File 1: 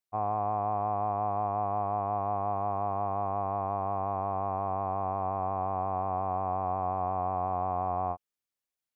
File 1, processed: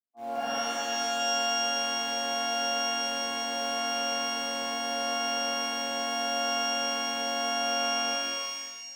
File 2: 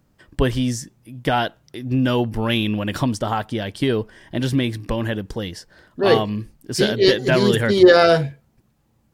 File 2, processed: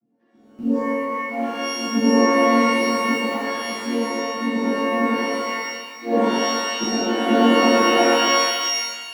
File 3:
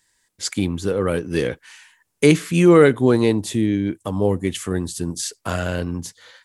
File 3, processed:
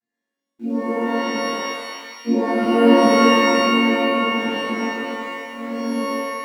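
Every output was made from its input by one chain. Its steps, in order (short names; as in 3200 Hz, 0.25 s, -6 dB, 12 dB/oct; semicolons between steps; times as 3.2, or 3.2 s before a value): chord vocoder minor triad, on A#3; auto swell 0.151 s; tilt -3 dB/oct; in parallel at -6 dB: sample gate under -33.5 dBFS; on the sum: notches 50/100/150/200/250/300/350 Hz; dynamic EQ 220 Hz, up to +7 dB, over -30 dBFS, Q 6.7; stuck buffer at 0.31, samples 2048, times 5; shimmer reverb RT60 1.4 s, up +12 st, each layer -2 dB, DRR -10.5 dB; gain -17.5 dB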